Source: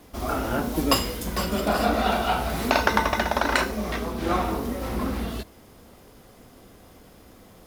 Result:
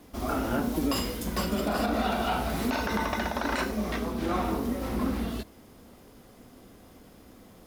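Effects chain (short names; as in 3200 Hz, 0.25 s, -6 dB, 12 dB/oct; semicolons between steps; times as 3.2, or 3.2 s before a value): bell 250 Hz +4.5 dB 0.85 oct; limiter -14.5 dBFS, peak gain reduction 11 dB; gain -3.5 dB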